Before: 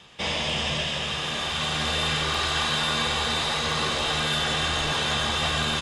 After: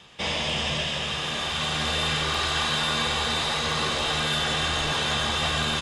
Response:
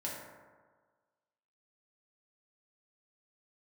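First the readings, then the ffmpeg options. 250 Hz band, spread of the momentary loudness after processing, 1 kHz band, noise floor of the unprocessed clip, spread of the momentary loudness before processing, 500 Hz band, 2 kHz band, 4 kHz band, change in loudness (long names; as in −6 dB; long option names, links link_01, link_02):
0.0 dB, 3 LU, 0.0 dB, −30 dBFS, 3 LU, 0.0 dB, 0.0 dB, 0.0 dB, 0.0 dB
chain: -af "acontrast=64,volume=-6.5dB"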